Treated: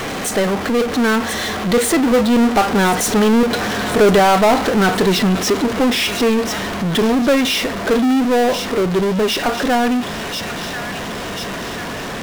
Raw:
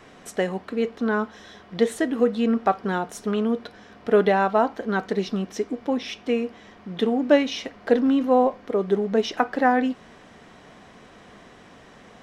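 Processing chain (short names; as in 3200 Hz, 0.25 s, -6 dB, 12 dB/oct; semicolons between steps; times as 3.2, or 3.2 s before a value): Doppler pass-by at 3.85, 15 m/s, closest 21 m; thin delay 1.038 s, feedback 46%, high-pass 3400 Hz, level -10.5 dB; power-law curve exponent 0.35; gain +1.5 dB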